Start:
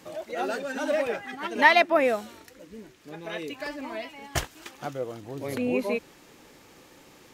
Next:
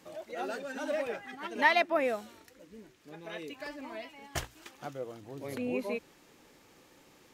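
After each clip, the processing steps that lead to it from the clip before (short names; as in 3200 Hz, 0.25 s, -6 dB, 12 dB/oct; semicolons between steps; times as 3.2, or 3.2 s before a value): notches 60/120 Hz; gain -7 dB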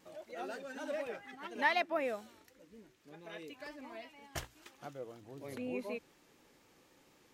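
vibrato 4.1 Hz 39 cents; gain -6 dB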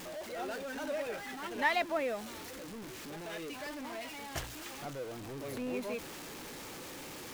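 zero-crossing step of -40.5 dBFS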